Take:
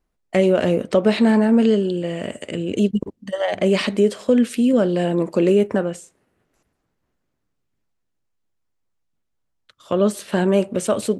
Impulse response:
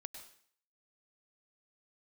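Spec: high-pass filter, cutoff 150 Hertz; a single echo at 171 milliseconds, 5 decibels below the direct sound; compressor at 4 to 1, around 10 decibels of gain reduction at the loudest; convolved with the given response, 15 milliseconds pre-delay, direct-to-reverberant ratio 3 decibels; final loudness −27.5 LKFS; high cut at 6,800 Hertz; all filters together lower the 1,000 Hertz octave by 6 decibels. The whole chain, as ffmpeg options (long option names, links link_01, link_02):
-filter_complex "[0:a]highpass=150,lowpass=6800,equalizer=frequency=1000:width_type=o:gain=-9,acompressor=threshold=-25dB:ratio=4,aecho=1:1:171:0.562,asplit=2[link_01][link_02];[1:a]atrim=start_sample=2205,adelay=15[link_03];[link_02][link_03]afir=irnorm=-1:irlink=0,volume=1.5dB[link_04];[link_01][link_04]amix=inputs=2:normalize=0,volume=-1dB"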